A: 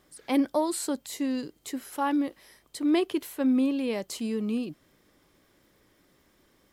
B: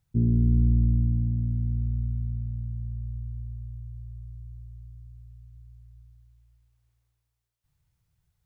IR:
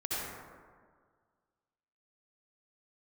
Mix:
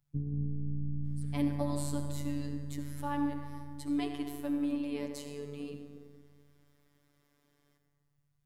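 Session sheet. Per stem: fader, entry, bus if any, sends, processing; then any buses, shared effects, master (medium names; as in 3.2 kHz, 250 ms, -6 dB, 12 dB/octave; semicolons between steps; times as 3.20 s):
+0.5 dB, 1.05 s, send -9.5 dB, none
+1.0 dB, 0.00 s, send -4.5 dB, compression, threshold -24 dBFS, peak gain reduction 7.5 dB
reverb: on, RT60 1.8 s, pre-delay 58 ms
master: bass shelf 89 Hz +6 dB; feedback comb 170 Hz, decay 1.8 s, mix 70%; robot voice 144 Hz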